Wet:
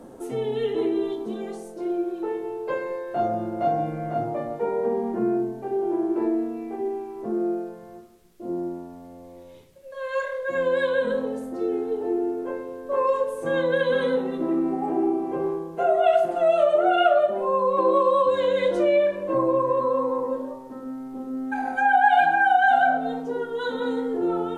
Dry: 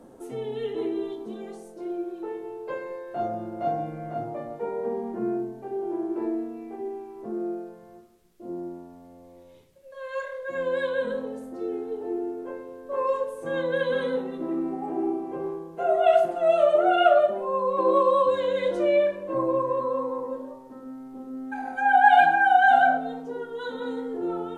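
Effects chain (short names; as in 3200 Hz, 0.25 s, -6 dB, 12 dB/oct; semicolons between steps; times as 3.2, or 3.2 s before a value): compressor 2:1, threshold -25 dBFS, peak gain reduction 8 dB; gain +5.5 dB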